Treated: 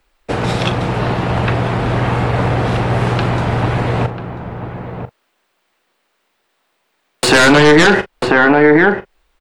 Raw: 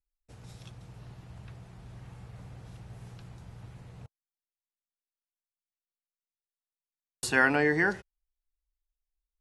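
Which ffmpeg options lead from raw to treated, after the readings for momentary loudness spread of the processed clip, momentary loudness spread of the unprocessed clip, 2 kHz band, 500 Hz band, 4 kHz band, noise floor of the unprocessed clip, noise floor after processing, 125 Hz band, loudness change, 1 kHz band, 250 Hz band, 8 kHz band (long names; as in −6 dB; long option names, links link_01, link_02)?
19 LU, 14 LU, +16.0 dB, +22.0 dB, +26.0 dB, below −85 dBFS, −66 dBFS, +26.5 dB, +12.5 dB, +21.5 dB, +22.0 dB, +17.5 dB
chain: -filter_complex "[0:a]aeval=exprs='(tanh(11.2*val(0)+0.75)-tanh(0.75))/11.2':channel_layout=same,asplit=2[link_01][link_02];[link_02]adelay=991.3,volume=-9dB,highshelf=frequency=4000:gain=-22.3[link_03];[link_01][link_03]amix=inputs=2:normalize=0,acrossover=split=220|4700[link_04][link_05][link_06];[link_05]aeval=exprs='0.141*sin(PI/2*3.55*val(0)/0.141)':channel_layout=same[link_07];[link_04][link_07][link_06]amix=inputs=3:normalize=0,aexciter=amount=1.5:drive=5.9:freq=7800,highshelf=frequency=3400:gain=-9,acompressor=threshold=-40dB:ratio=1.5,asplit=2[link_08][link_09];[link_09]adelay=40,volume=-13dB[link_10];[link_08][link_10]amix=inputs=2:normalize=0,alimiter=level_in=30dB:limit=-1dB:release=50:level=0:latency=1,volume=-1dB"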